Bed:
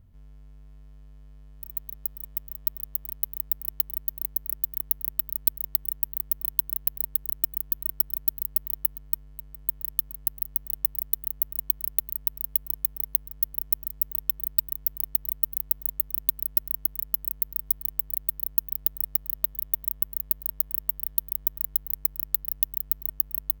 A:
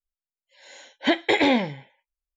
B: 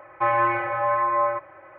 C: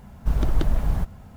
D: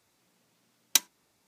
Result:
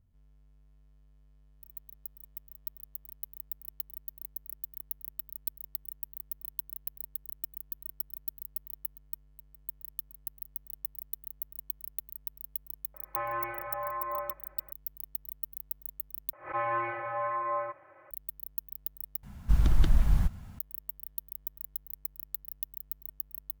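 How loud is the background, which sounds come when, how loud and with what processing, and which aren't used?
bed −12.5 dB
0:12.94: mix in B −13.5 dB
0:16.33: overwrite with B −10 dB + background raised ahead of every attack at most 150 dB per second
0:19.23: overwrite with C −1 dB + parametric band 510 Hz −11 dB 1.8 octaves
not used: A, D

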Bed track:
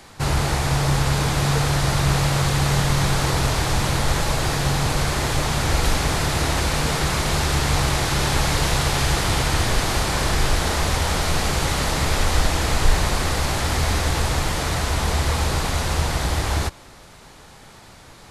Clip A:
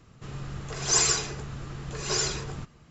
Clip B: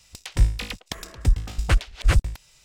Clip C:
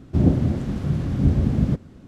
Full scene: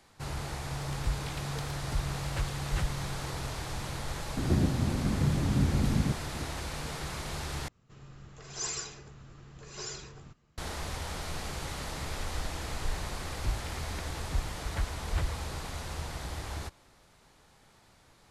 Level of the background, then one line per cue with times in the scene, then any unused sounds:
bed track −16 dB
0:00.67: mix in B −14.5 dB
0:04.37: mix in C −8.5 dB + multiband upward and downward compressor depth 100%
0:07.68: overwrite with A −13 dB
0:13.07: mix in B −13.5 dB + linearly interpolated sample-rate reduction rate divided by 8×

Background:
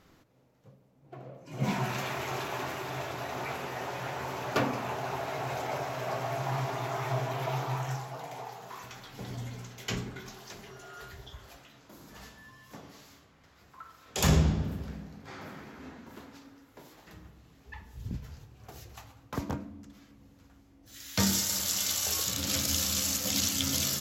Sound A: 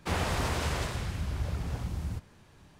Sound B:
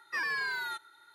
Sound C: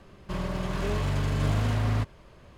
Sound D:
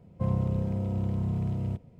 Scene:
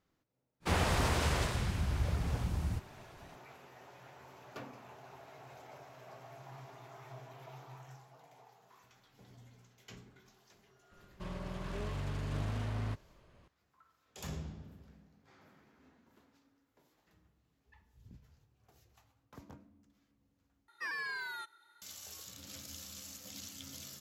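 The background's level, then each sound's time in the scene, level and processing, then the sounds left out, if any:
background −19 dB
0:00.60: mix in A −0.5 dB, fades 0.05 s
0:10.91: mix in C −11 dB + highs frequency-modulated by the lows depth 0.26 ms
0:20.68: overwrite with B −6.5 dB
not used: D

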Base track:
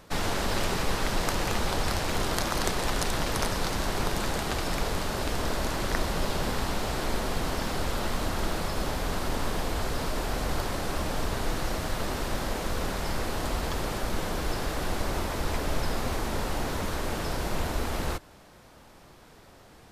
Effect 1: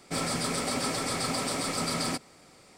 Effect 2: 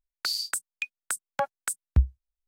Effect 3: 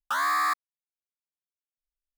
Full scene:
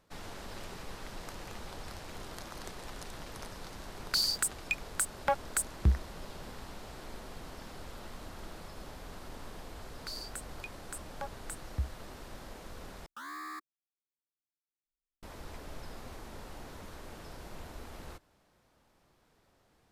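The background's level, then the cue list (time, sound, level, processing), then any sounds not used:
base track −16.5 dB
0:03.89: mix in 2 −7 dB + leveller curve on the samples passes 2
0:09.82: mix in 2 −13.5 dB
0:13.06: overwrite with 3 −16.5 dB + low shelf with overshoot 470 Hz +10 dB, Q 3
not used: 1

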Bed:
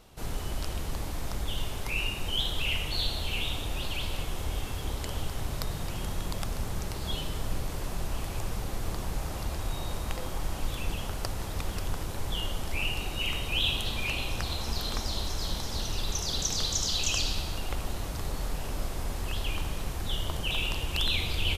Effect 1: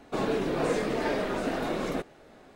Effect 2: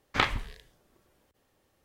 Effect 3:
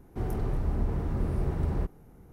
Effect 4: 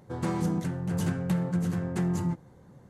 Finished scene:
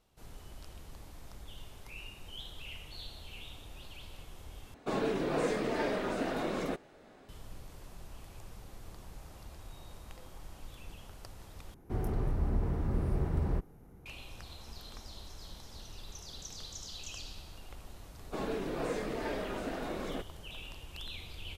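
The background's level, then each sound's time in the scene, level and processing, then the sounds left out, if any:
bed −16 dB
0:04.74: overwrite with 1 −4 dB
0:11.74: overwrite with 3 −2.5 dB
0:18.20: mix in 1 −8 dB
not used: 2, 4

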